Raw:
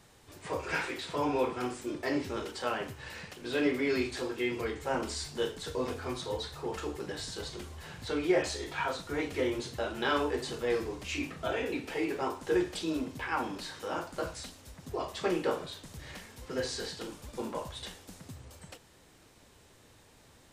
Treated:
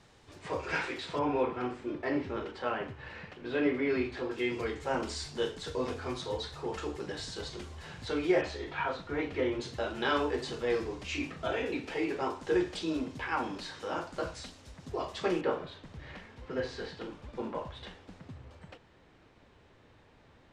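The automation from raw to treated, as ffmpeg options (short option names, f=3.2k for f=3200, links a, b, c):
-af "asetnsamples=n=441:p=0,asendcmd='1.19 lowpass f 2600;4.31 lowpass f 7000;8.41 lowpass f 3100;9.61 lowpass f 6300;15.41 lowpass f 2800',lowpass=5.9k"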